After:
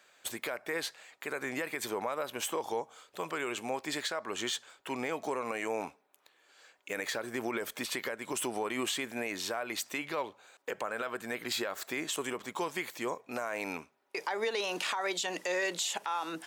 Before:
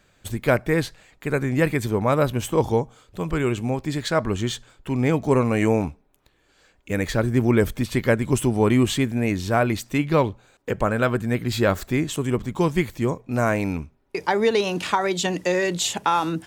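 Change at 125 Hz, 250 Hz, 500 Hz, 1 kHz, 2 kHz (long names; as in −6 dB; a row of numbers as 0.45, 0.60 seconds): −30.0, −18.0, −13.5, −11.0, −8.0 decibels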